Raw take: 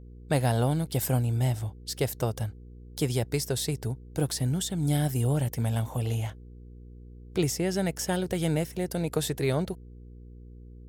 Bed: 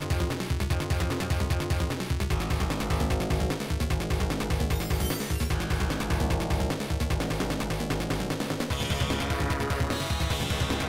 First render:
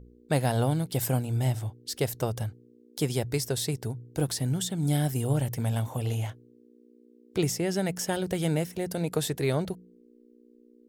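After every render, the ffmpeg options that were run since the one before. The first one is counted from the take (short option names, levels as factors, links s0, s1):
-af "bandreject=f=60:t=h:w=4,bandreject=f=120:t=h:w=4,bandreject=f=180:t=h:w=4"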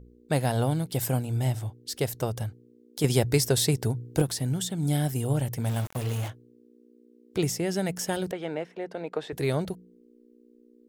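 -filter_complex "[0:a]asettb=1/sr,asplit=3[s0][s1][s2];[s0]atrim=end=3.044[s3];[s1]atrim=start=3.04:end=4.22,asetpts=PTS-STARTPTS,afade=t=in:d=0.004:c=qsin,afade=t=out:st=1.176:d=0.004:c=qsin,acontrast=51[s4];[s2]atrim=start=4.216[s5];[s3][s4]acrossfade=d=0.004:c1=hsin:c2=qsin[s6];[s6][s5]acrossfade=d=0.004:c1=qsin:c2=hsin,asplit=3[s7][s8][s9];[s7]afade=t=out:st=5.64:d=0.02[s10];[s8]aeval=exprs='val(0)*gte(abs(val(0)),0.0211)':c=same,afade=t=in:st=5.64:d=0.02,afade=t=out:st=6.27:d=0.02[s11];[s9]afade=t=in:st=6.27:d=0.02[s12];[s10][s11][s12]amix=inputs=3:normalize=0,asettb=1/sr,asplit=3[s13][s14][s15];[s13]atrim=end=8.314[s16];[s14]atrim=start=8.31:end=9.33,asetpts=PTS-STARTPTS,afade=t=in:d=0.004:c=qsin,afade=t=out:st=1.016:d=0.004:c=qsin,highpass=370,lowpass=2300[s17];[s15]atrim=start=9.326[s18];[s16][s17]acrossfade=d=0.004:c1=hsin:c2=qsin[s19];[s19][s18]acrossfade=d=0.004:c1=qsin:c2=hsin"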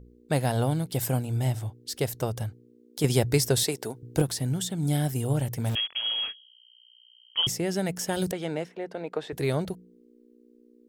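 -filter_complex "[0:a]asettb=1/sr,asplit=3[s0][s1][s2];[s0]atrim=end=3.634[s3];[s1]atrim=start=3.63:end=4.03,asetpts=PTS-STARTPTS,afade=t=in:d=0.004:c=qsin,afade=t=out:st=0.396:d=0.004:c=qsin,highpass=320[s4];[s2]atrim=start=4.026[s5];[s3][s4]acrossfade=d=0.004:c1=hsin:c2=qsin[s6];[s6][s5]acrossfade=d=0.004:c1=qsin:c2=hsin,asettb=1/sr,asplit=3[s7][s8][s9];[s7]atrim=end=5.754[s10];[s8]atrim=start=5.75:end=7.47,asetpts=PTS-STARTPTS,afade=t=in:d=0.004:c=qsin,afade=t=out:st=1.716:d=0.004:c=qsin,lowpass=f=2900:t=q:w=0.5098,lowpass=f=2900:t=q:w=0.6013,lowpass=f=2900:t=q:w=0.9,lowpass=f=2900:t=q:w=2.563,afreqshift=-3400[s11];[s9]atrim=start=7.466[s12];[s10][s11]acrossfade=d=0.004:c1=hsin:c2=qsin[s13];[s13][s12]acrossfade=d=0.004:c1=qsin:c2=hsin,asplit=3[s14][s15][s16];[s14]afade=t=out:st=8.16:d=0.02[s17];[s15]bass=f=250:g=6,treble=f=4000:g=12,afade=t=in:st=8.16:d=0.02,afade=t=out:st=8.68:d=0.02[s18];[s16]afade=t=in:st=8.68:d=0.02[s19];[s17][s18][s19]amix=inputs=3:normalize=0"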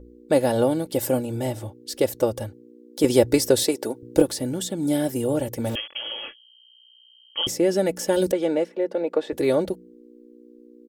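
-af "equalizer=f=440:t=o:w=0.93:g=12.5,aecho=1:1:3.5:0.67"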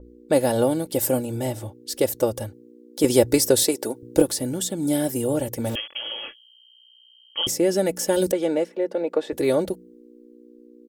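-af "adynamicequalizer=threshold=0.00794:dfrequency=5800:dqfactor=0.7:tfrequency=5800:tqfactor=0.7:attack=5:release=100:ratio=0.375:range=3:mode=boostabove:tftype=highshelf"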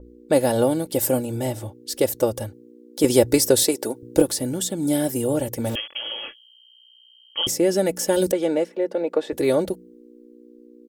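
-af "volume=1.12,alimiter=limit=0.708:level=0:latency=1"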